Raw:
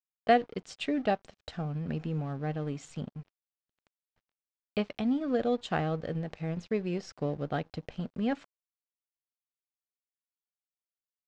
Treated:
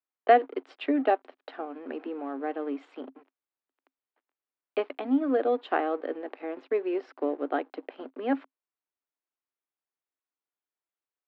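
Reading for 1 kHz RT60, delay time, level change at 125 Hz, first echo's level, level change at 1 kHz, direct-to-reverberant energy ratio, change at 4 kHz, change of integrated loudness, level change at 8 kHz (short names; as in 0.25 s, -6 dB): none, none, under -30 dB, none, +5.0 dB, none, -4.0 dB, +3.5 dB, n/a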